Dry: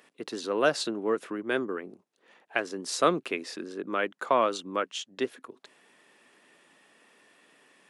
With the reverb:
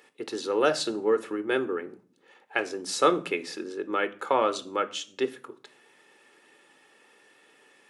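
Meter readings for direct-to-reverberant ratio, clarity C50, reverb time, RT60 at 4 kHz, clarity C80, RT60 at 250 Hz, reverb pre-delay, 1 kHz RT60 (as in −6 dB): 11.0 dB, 18.5 dB, 0.50 s, 0.35 s, 22.5 dB, 0.80 s, 4 ms, 0.40 s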